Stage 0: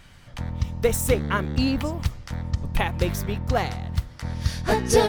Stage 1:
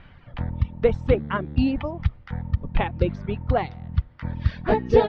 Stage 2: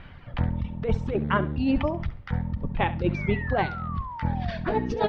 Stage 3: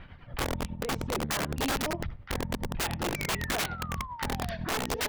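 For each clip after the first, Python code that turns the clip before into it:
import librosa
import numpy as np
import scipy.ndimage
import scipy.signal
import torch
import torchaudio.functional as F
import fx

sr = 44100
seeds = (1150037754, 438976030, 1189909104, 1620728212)

y1 = fx.dereverb_blind(x, sr, rt60_s=1.8)
y1 = scipy.signal.sosfilt(scipy.signal.bessel(6, 2200.0, 'lowpass', norm='mag', fs=sr, output='sos'), y1)
y1 = fx.dynamic_eq(y1, sr, hz=1500.0, q=0.97, threshold_db=-39.0, ratio=4.0, max_db=-5)
y1 = y1 * 10.0 ** (3.0 / 20.0)
y2 = fx.over_compress(y1, sr, threshold_db=-23.0, ratio=-1.0)
y2 = fx.spec_paint(y2, sr, seeds[0], shape='fall', start_s=3.14, length_s=1.44, low_hz=640.0, high_hz=2400.0, level_db=-37.0)
y2 = fx.echo_feedback(y2, sr, ms=68, feedback_pct=25, wet_db=-15.0)
y3 = fx.tremolo_shape(y2, sr, shape='triangle', hz=10.0, depth_pct=70)
y3 = (np.mod(10.0 ** (24.0 / 20.0) * y3 + 1.0, 2.0) - 1.0) / 10.0 ** (24.0 / 20.0)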